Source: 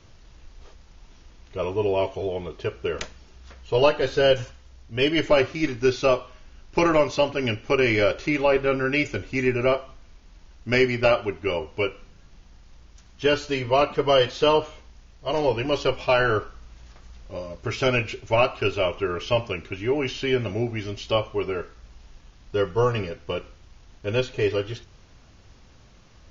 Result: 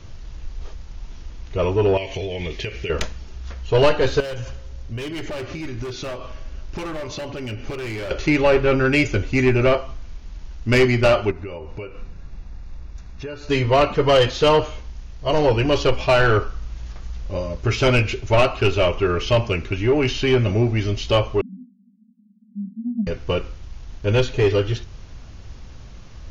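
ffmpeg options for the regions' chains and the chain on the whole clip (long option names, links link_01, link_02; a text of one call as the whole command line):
ffmpeg -i in.wav -filter_complex "[0:a]asettb=1/sr,asplit=3[link_01][link_02][link_03];[link_01]atrim=end=1.974[link_04];[link_02]atrim=start=1.97:end=2.9,asetpts=PTS-STARTPTS,afade=type=in:duration=0.004:curve=qsin,afade=type=out:start_time=0.926:duration=0.004:curve=qsin,highshelf=frequency=1600:width_type=q:width=3:gain=7.5,acompressor=threshold=-31dB:ratio=10:attack=3.2:release=140:knee=1:detection=peak[link_05];[link_03]atrim=start=2.896[link_06];[link_04][link_05]acrossfade=duration=0.004:curve1=hsin:curve2=qsin[link_07];[link_07][link_06]acrossfade=duration=0.004:curve1=qsin:curve2=hsin,asettb=1/sr,asplit=3[link_08][link_09][link_10];[link_08]atrim=end=4.204[link_11];[link_09]atrim=start=4.2:end=8.11,asetpts=PTS-STARTPTS,afade=type=in:duration=0.004:curve=qsin,afade=type=out:start_time=3.906:duration=0.004:curve=qsin,volume=21.5dB,asoftclip=hard,volume=-21.5dB,acompressor=threshold=-35dB:ratio=16:attack=3.2:release=140:knee=1:detection=peak,asplit=2[link_12][link_13];[link_13]adelay=164,lowpass=frequency=1200:poles=1,volume=-16dB,asplit=2[link_14][link_15];[link_15]adelay=164,lowpass=frequency=1200:poles=1,volume=0.54,asplit=2[link_16][link_17];[link_17]adelay=164,lowpass=frequency=1200:poles=1,volume=0.54,asplit=2[link_18][link_19];[link_19]adelay=164,lowpass=frequency=1200:poles=1,volume=0.54,asplit=2[link_20][link_21];[link_21]adelay=164,lowpass=frequency=1200:poles=1,volume=0.54[link_22];[link_12][link_14][link_16][link_18][link_20][link_22]amix=inputs=6:normalize=0,atrim=end_sample=172431[link_23];[link_10]atrim=start=8.106[link_24];[link_11][link_23]acrossfade=duration=0.004:curve1=hsin:curve2=qsin[link_25];[link_25][link_24]acrossfade=duration=0.004:curve1=qsin:curve2=hsin,asettb=1/sr,asplit=3[link_26][link_27][link_28];[link_26]atrim=end=11.314[link_29];[link_27]atrim=start=11.31:end=13.5,asetpts=PTS-STARTPTS,afade=type=in:duration=0.004:curve=qsin,afade=type=out:start_time=2.186:duration=0.004:curve=qsin,asuperstop=centerf=3100:order=8:qfactor=7.4,acompressor=threshold=-39dB:ratio=4:attack=3.2:release=140:knee=1:detection=peak,highshelf=frequency=4100:gain=-9.5[link_30];[link_28]atrim=start=13.496[link_31];[link_29][link_30]acrossfade=duration=0.004:curve1=hsin:curve2=qsin[link_32];[link_32][link_31]acrossfade=duration=0.004:curve1=qsin:curve2=hsin,asettb=1/sr,asplit=3[link_33][link_34][link_35];[link_33]atrim=end=21.414[link_36];[link_34]atrim=start=21.41:end=23.07,asetpts=PTS-STARTPTS,afade=type=in:duration=0.004:curve=qsin,afade=type=out:start_time=1.656:duration=0.004:curve=qsin,asuperpass=centerf=220:order=12:qfactor=3.5,aemphasis=mode=reproduction:type=bsi[link_37];[link_35]atrim=start=23.066[link_38];[link_36][link_37]acrossfade=duration=0.004:curve1=hsin:curve2=qsin[link_39];[link_39][link_38]acrossfade=duration=0.004:curve1=qsin:curve2=hsin,acontrast=80,lowshelf=frequency=130:gain=9.5,acontrast=60,volume=-7dB" out.wav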